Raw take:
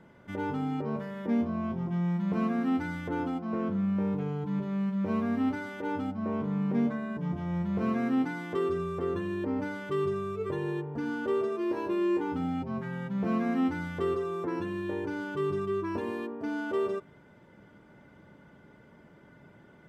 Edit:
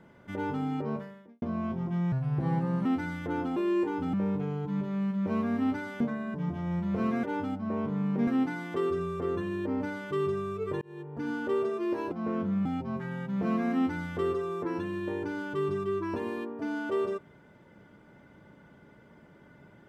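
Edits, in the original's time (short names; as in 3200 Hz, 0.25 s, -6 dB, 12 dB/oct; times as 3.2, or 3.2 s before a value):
0.93–1.42 fade out quadratic
2.12–2.67 speed 75%
3.38–3.92 swap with 11.9–12.47
5.79–6.83 move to 8.06
10.6–11.07 fade in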